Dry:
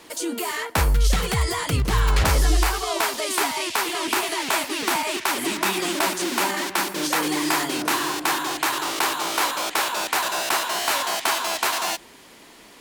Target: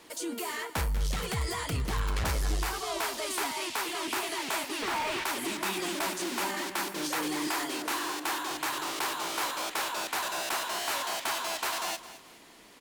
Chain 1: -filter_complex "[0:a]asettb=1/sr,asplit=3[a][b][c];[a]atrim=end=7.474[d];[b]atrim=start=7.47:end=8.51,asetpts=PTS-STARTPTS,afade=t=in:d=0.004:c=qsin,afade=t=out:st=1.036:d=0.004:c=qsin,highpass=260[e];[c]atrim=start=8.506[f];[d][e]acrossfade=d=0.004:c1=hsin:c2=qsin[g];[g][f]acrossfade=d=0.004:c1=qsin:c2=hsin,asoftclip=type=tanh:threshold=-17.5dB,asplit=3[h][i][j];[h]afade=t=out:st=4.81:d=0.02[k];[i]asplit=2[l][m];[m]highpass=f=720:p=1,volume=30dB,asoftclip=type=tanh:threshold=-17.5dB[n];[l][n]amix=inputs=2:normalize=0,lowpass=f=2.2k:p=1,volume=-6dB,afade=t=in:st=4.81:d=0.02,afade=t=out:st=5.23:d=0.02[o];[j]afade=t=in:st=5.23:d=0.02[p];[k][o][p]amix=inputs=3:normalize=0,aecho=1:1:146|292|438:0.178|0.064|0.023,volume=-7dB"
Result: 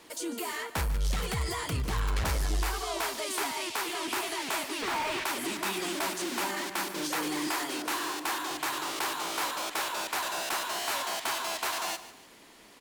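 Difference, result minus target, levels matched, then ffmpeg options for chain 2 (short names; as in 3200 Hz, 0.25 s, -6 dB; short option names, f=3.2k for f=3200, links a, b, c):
echo 66 ms early
-filter_complex "[0:a]asettb=1/sr,asplit=3[a][b][c];[a]atrim=end=7.474[d];[b]atrim=start=7.47:end=8.51,asetpts=PTS-STARTPTS,afade=t=in:d=0.004:c=qsin,afade=t=out:st=1.036:d=0.004:c=qsin,highpass=260[e];[c]atrim=start=8.506[f];[d][e]acrossfade=d=0.004:c1=hsin:c2=qsin[g];[g][f]acrossfade=d=0.004:c1=qsin:c2=hsin,asoftclip=type=tanh:threshold=-17.5dB,asplit=3[h][i][j];[h]afade=t=out:st=4.81:d=0.02[k];[i]asplit=2[l][m];[m]highpass=f=720:p=1,volume=30dB,asoftclip=type=tanh:threshold=-17.5dB[n];[l][n]amix=inputs=2:normalize=0,lowpass=f=2.2k:p=1,volume=-6dB,afade=t=in:st=4.81:d=0.02,afade=t=out:st=5.23:d=0.02[o];[j]afade=t=in:st=5.23:d=0.02[p];[k][o][p]amix=inputs=3:normalize=0,aecho=1:1:212|424|636:0.178|0.064|0.023,volume=-7dB"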